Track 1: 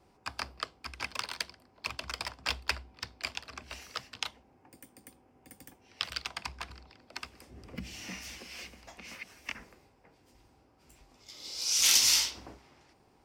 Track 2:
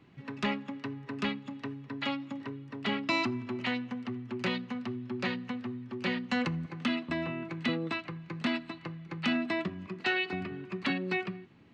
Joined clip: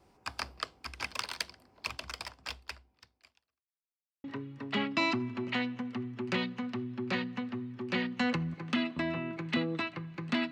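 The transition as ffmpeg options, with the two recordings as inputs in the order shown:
ffmpeg -i cue0.wav -i cue1.wav -filter_complex "[0:a]apad=whole_dur=10.51,atrim=end=10.51,asplit=2[link_01][link_02];[link_01]atrim=end=3.67,asetpts=PTS-STARTPTS,afade=type=out:start_time=1.83:duration=1.84:curve=qua[link_03];[link_02]atrim=start=3.67:end=4.24,asetpts=PTS-STARTPTS,volume=0[link_04];[1:a]atrim=start=2.36:end=8.63,asetpts=PTS-STARTPTS,afade=type=in:duration=0.004:curve=hsin[link_05];[link_03][link_04][link_05]concat=n=3:v=0:a=1" out.wav

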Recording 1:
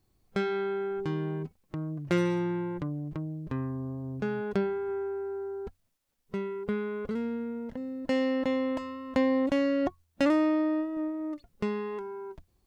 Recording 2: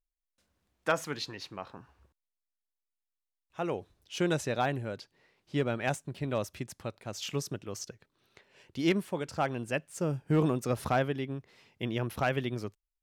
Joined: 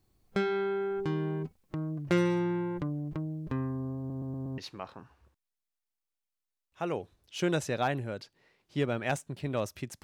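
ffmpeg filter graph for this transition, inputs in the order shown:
ffmpeg -i cue0.wav -i cue1.wav -filter_complex "[0:a]apad=whole_dur=10.03,atrim=end=10.03,asplit=5[link_01][link_02][link_03][link_04][link_05];[link_01]atrim=end=4.102[link_06];[link_02]atrim=start=3.978:end=4.102[link_07];[link_03]atrim=start=3.978:end=4.102[link_08];[link_04]atrim=start=3.978:end=4.102[link_09];[link_05]atrim=start=3.978:end=4.102[link_10];[1:a]atrim=start=1.358:end=6.81[link_11];[link_06][link_07]acrossfade=duration=0.004:curve1=hsin:curve2=hsin[link_12];[link_12][link_08]acrossfade=duration=0.004:curve1=hsin:curve2=hsin[link_13];[link_13][link_09]acrossfade=duration=0.004:curve1=hsin:curve2=hsin[link_14];[link_14][link_10]acrossfade=duration=0.004:curve1=hsin:curve2=hsin[link_15];[link_15][link_11]acrossfade=duration=0.004:curve1=hsin:curve2=hsin" out.wav

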